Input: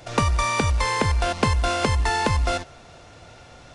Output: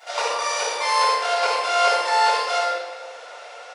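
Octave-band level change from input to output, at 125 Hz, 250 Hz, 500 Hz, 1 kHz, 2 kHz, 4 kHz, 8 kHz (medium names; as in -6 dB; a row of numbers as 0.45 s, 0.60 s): under -40 dB, under -20 dB, +3.5 dB, +5.5 dB, +2.5 dB, +5.0 dB, +2.5 dB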